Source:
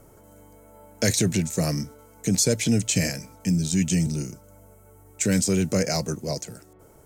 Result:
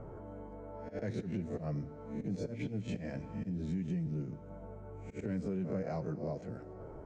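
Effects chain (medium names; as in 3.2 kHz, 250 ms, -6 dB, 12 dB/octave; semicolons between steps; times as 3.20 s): reverse spectral sustain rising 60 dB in 0.37 s; low-pass 1.2 kHz 12 dB/octave; slow attack 207 ms; flange 0.59 Hz, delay 1.4 ms, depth 6.3 ms, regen -60%; in parallel at 0 dB: peak limiter -23.5 dBFS, peak gain reduction 7 dB; on the sum: compression 4:1, threshold -39 dBFS, peak gain reduction 17.5 dB; Schroeder reverb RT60 3 s, combs from 26 ms, DRR 16 dB; trim +2 dB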